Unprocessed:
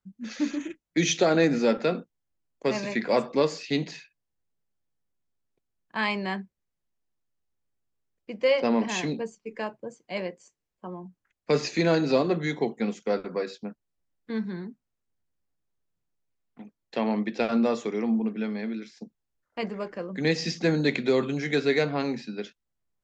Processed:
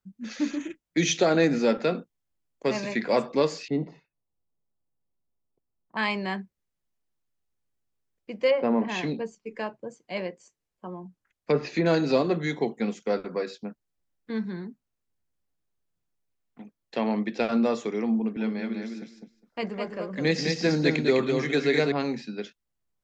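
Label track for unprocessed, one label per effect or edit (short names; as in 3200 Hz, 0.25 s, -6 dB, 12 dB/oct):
3.680000	5.970000	polynomial smoothing over 65 samples
8.490000	11.860000	treble ducked by the level closes to 1500 Hz, closed at -19.5 dBFS
18.160000	21.920000	feedback echo 0.205 s, feedback 16%, level -4.5 dB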